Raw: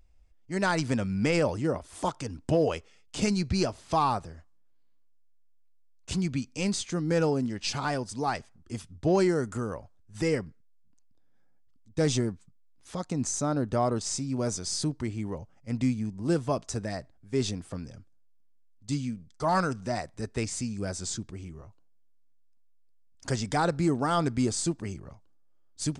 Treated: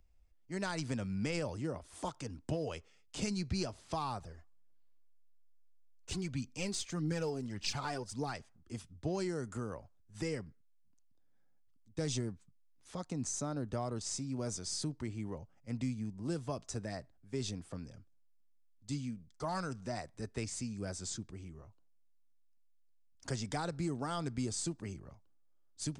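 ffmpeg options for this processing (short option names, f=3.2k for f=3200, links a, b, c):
-filter_complex "[0:a]asplit=3[a][b][c];[a]afade=t=out:st=4.2:d=0.02[d];[b]aphaser=in_gain=1:out_gain=1:delay=3:decay=0.5:speed=1.7:type=triangular,afade=t=in:st=4.2:d=0.02,afade=t=out:st=8.31:d=0.02[e];[c]afade=t=in:st=8.31:d=0.02[f];[d][e][f]amix=inputs=3:normalize=0,acrossover=split=140|3000[g][h][i];[h]acompressor=threshold=-29dB:ratio=3[j];[g][j][i]amix=inputs=3:normalize=0,volume=-7dB"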